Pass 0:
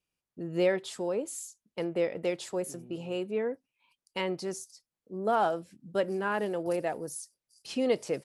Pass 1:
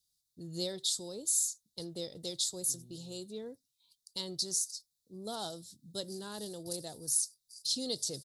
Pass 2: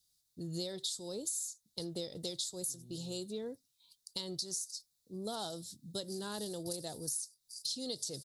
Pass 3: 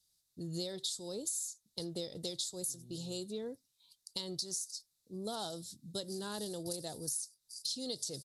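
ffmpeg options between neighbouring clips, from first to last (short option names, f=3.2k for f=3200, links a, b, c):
-af "firequalizer=gain_entry='entry(130,0);entry(190,-8);entry(560,-15);entry(2500,-23);entry(3700,13);entry(5600,11)':delay=0.05:min_phase=1"
-af "acompressor=threshold=-40dB:ratio=6,volume=4dB"
-af "aresample=32000,aresample=44100,aeval=exprs='0.0841*(cos(1*acos(clip(val(0)/0.0841,-1,1)))-cos(1*PI/2))+0.00335*(cos(3*acos(clip(val(0)/0.0841,-1,1)))-cos(3*PI/2))':c=same,volume=1dB"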